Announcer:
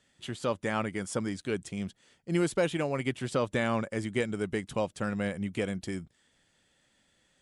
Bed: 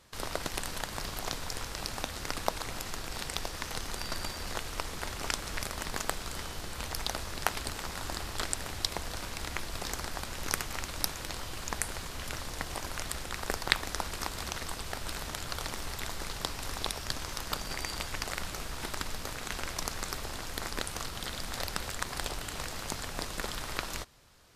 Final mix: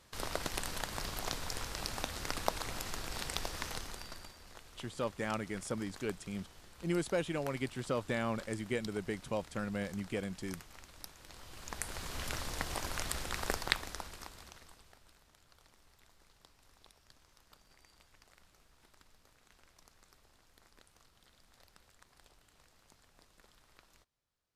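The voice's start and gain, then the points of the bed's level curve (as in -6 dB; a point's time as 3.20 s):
4.55 s, -6.0 dB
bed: 3.66 s -2.5 dB
4.39 s -17.5 dB
11.17 s -17.5 dB
12.15 s -1 dB
13.47 s -1 dB
15.20 s -28 dB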